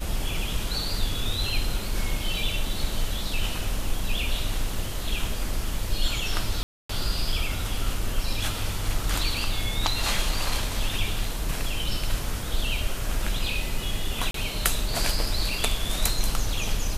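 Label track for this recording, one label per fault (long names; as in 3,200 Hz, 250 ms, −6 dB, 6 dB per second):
6.630000	6.890000	drop-out 264 ms
14.310000	14.340000	drop-out 33 ms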